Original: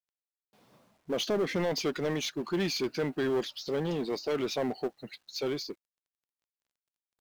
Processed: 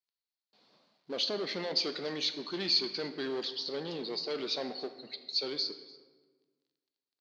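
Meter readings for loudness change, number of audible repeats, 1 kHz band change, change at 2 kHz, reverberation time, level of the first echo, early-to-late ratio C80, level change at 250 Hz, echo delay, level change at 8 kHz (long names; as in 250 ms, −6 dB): −1.5 dB, 1, −5.5 dB, −4.0 dB, 1.4 s, −22.5 dB, 12.0 dB, −7.5 dB, 291 ms, −7.5 dB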